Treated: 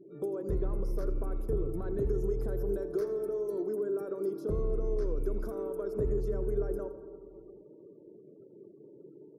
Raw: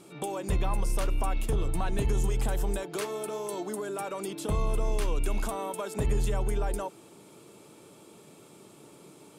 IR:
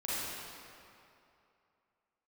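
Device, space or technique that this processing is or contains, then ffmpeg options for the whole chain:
saturated reverb return: -filter_complex "[0:a]asplit=2[link_01][link_02];[1:a]atrim=start_sample=2205[link_03];[link_02][link_03]afir=irnorm=-1:irlink=0,asoftclip=type=tanh:threshold=-20dB,volume=-13.5dB[link_04];[link_01][link_04]amix=inputs=2:normalize=0,asettb=1/sr,asplit=3[link_05][link_06][link_07];[link_05]atrim=end=4.654[link_08];[link_06]atrim=start=4.65:end=5.2,asetpts=PTS-STARTPTS,afade=type=in:duration=0.004:curve=qsin,afade=type=out:start_time=0.546:duration=0.004:curve=qsin,lowpass=8800[link_09];[link_07]atrim=start=5.196[link_10];[link_08][link_09]acrossfade=duration=0.004:curve1=hsin:curve2=qsin[link_11];[link_11][link_10]acrossfade=duration=0.004:curve1=qsin:curve2=hsin,afftfilt=real='re*gte(hypot(re,im),0.00562)':imag='im*gte(hypot(re,im),0.00562)':win_size=1024:overlap=0.75,firequalizer=gain_entry='entry(260,0);entry(380,10);entry(820,-14);entry(1400,-5);entry(2800,-29);entry(5300,-6);entry(7800,-26);entry(12000,-5)':delay=0.05:min_phase=1,aecho=1:1:84|168|252:0.158|0.0602|0.0229,volume=-6dB"

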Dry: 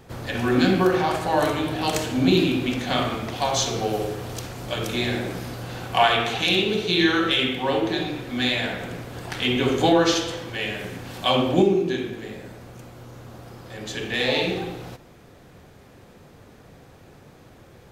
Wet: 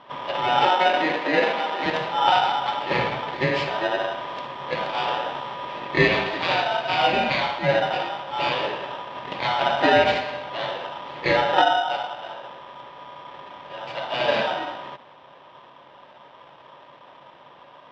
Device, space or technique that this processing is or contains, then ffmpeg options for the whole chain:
ring modulator pedal into a guitar cabinet: -filter_complex "[0:a]aeval=exprs='val(0)*sgn(sin(2*PI*1100*n/s))':channel_layout=same,highpass=87,equalizer=frequency=91:width_type=q:width=4:gain=-5,equalizer=frequency=140:width_type=q:width=4:gain=9,equalizer=frequency=270:width_type=q:width=4:gain=3,equalizer=frequency=550:width_type=q:width=4:gain=8,equalizer=frequency=980:width_type=q:width=4:gain=5,equalizer=frequency=1400:width_type=q:width=4:gain=-9,lowpass=frequency=3400:width=0.5412,lowpass=frequency=3400:width=1.3066,asettb=1/sr,asplit=3[link_01][link_02][link_03];[link_01]atrim=end=0.694[link_04];[link_02]atrim=start=0.69:end=1.86,asetpts=PTS-STARTPTS,afade=type=in:duration=0.004:curve=qsin,afade=type=out:start_time=1.166:duration=0.004:curve=qsin,highpass=frequency=220:width=0.5412,highpass=frequency=220:width=1.3066[link_05];[link_03]atrim=start=1.856[link_06];[link_04][link_05]acrossfade=duration=0.004:curve1=hsin:curve2=qsin[link_07];[link_07][link_06]acrossfade=duration=0.004:curve1=qsin:curve2=hsin"

